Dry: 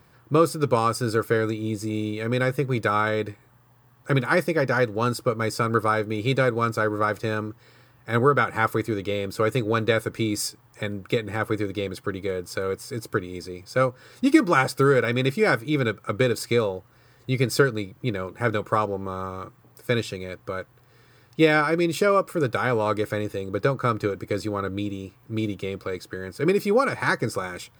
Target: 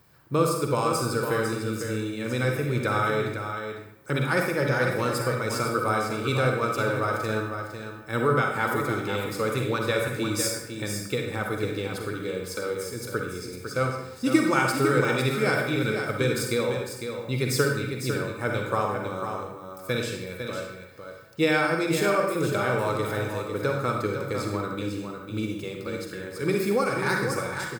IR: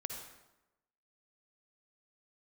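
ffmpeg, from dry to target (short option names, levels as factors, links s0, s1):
-filter_complex "[0:a]highshelf=f=4600:g=7,aecho=1:1:502:0.422[s0];[1:a]atrim=start_sample=2205,asetrate=57330,aresample=44100[s1];[s0][s1]afir=irnorm=-1:irlink=0"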